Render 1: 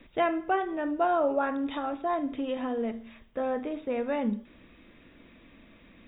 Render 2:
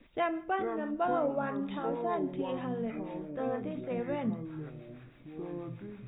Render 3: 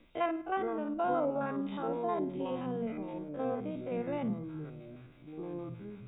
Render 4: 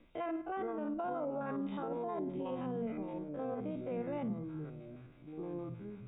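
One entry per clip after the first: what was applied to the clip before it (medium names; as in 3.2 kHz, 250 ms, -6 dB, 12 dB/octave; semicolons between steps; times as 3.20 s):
ever faster or slower copies 338 ms, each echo -7 st, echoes 2, each echo -6 dB; harmonic tremolo 6.3 Hz, depth 50%, crossover 580 Hz; trim -3 dB
spectrogram pixelated in time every 50 ms; band-stop 1.8 kHz, Q 7.3
treble shelf 3.3 kHz -9 dB; peak limiter -29 dBFS, peak gain reduction 8.5 dB; trim -1 dB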